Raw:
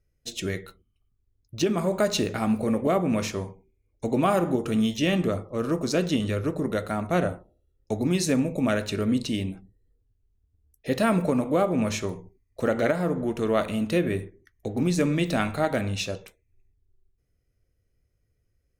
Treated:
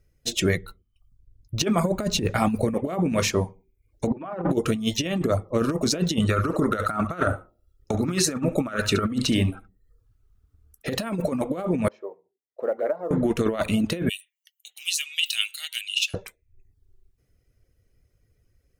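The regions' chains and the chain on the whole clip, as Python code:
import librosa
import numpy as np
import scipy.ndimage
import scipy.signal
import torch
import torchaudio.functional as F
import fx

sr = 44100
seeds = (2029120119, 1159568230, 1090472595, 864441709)

y = fx.chain(x, sr, fx.low_shelf(hz=140.0, db=9.5),
    fx.harmonic_tremolo(hz=1.3, depth_pct=50, crossover_hz=450.0), at=(0.57, 2.74))
y = fx.chain(y, sr, fx.lowpass(hz=1700.0, slope=12),
    fx.over_compress(threshold_db=-30.0, ratio=-0.5),
    fx.hum_notches(base_hz=50, count=7), at=(4.07, 4.5))
y = fx.chain(y, sr, fx.peak_eq(hz=1300.0, db=15.0, octaves=0.39),
    fx.echo_single(ms=71, db=-8.5), at=(6.29, 10.9))
y = fx.chain(y, sr, fx.ladder_bandpass(hz=630.0, resonance_pct=35),
    fx.quant_float(bits=6), at=(11.88, 13.11))
y = fx.chain(y, sr, fx.highpass_res(hz=2900.0, q=13.0),
    fx.differentiator(), at=(14.09, 16.14))
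y = fx.dereverb_blind(y, sr, rt60_s=0.51)
y = fx.over_compress(y, sr, threshold_db=-27.0, ratio=-0.5)
y = y * 10.0 ** (5.0 / 20.0)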